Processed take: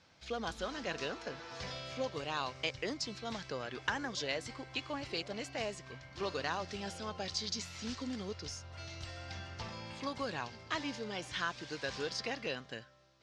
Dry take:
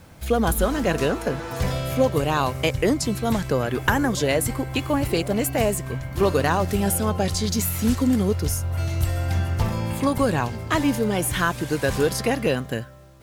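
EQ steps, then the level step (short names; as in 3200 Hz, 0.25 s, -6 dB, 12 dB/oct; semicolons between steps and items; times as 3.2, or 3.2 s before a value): band-pass 5300 Hz, Q 2; air absorption 130 m; tilt -3 dB/oct; +6.5 dB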